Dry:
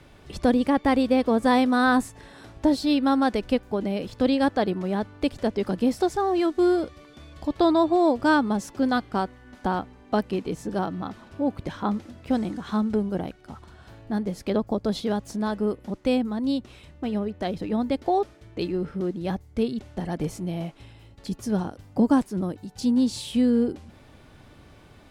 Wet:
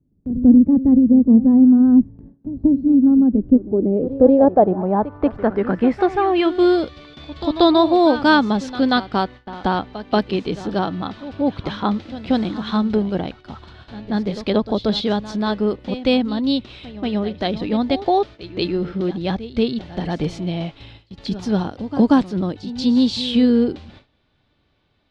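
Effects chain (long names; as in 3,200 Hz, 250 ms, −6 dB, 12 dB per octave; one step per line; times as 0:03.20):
echo ahead of the sound 184 ms −14 dB
low-pass filter sweep 230 Hz → 3,900 Hz, 0:03.25–0:06.76
noise gate with hold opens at −37 dBFS
level +5.5 dB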